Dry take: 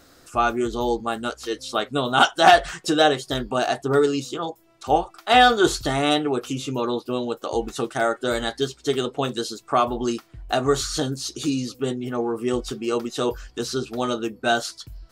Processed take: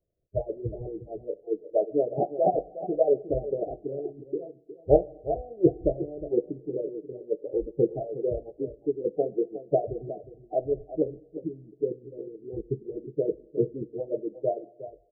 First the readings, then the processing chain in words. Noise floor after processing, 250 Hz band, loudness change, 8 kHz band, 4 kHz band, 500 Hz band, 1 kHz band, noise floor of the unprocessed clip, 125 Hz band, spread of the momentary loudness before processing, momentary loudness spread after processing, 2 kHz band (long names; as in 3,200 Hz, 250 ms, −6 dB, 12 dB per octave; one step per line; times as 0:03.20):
−58 dBFS, −7.0 dB, −7.0 dB, below −40 dB, below −40 dB, −3.0 dB, −15.5 dB, −56 dBFS, −5.0 dB, 11 LU, 13 LU, below −40 dB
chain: Butterworth low-pass 670 Hz 96 dB per octave
noise reduction from a noise print of the clip's start 25 dB
harmonic and percussive parts rebalanced harmonic −7 dB
low-shelf EQ 68 Hz +9.5 dB
harmonic and percussive parts rebalanced harmonic −18 dB
parametric band 250 Hz −14.5 dB 0.43 octaves
slap from a distant wall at 62 metres, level −13 dB
coupled-rooms reverb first 0.73 s, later 3.4 s, from −25 dB, DRR 16.5 dB
level +7.5 dB